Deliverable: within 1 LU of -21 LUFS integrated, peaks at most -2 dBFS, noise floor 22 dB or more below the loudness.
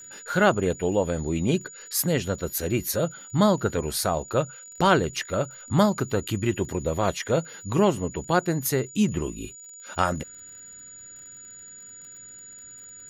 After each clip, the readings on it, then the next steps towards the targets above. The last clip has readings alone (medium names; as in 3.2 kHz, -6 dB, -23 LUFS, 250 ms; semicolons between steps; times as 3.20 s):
tick rate 49 per s; steady tone 6.9 kHz; tone level -42 dBFS; loudness -25.5 LUFS; peak level -7.0 dBFS; loudness target -21.0 LUFS
-> de-click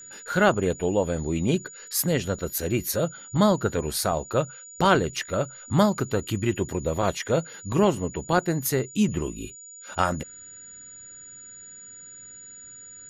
tick rate 0.15 per s; steady tone 6.9 kHz; tone level -42 dBFS
-> band-stop 6.9 kHz, Q 30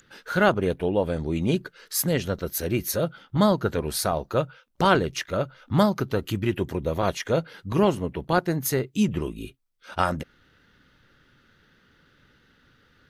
steady tone not found; loudness -25.5 LUFS; peak level -7.0 dBFS; loudness target -21.0 LUFS
-> trim +4.5 dB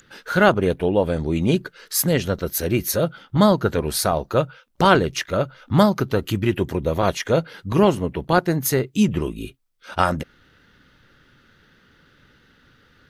loudness -21.0 LUFS; peak level -2.5 dBFS; noise floor -57 dBFS